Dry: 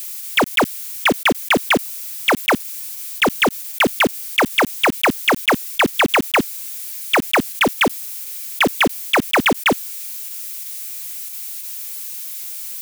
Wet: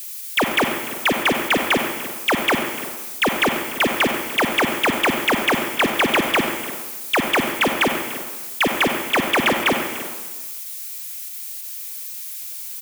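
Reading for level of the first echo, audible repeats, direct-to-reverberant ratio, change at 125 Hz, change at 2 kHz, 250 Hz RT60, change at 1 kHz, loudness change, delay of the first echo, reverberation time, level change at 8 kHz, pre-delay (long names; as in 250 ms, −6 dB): −18.0 dB, 2, 3.5 dB, −2.5 dB, −2.0 dB, 1.2 s, −2.0 dB, −2.0 dB, 294 ms, 1.3 s, −2.0 dB, 37 ms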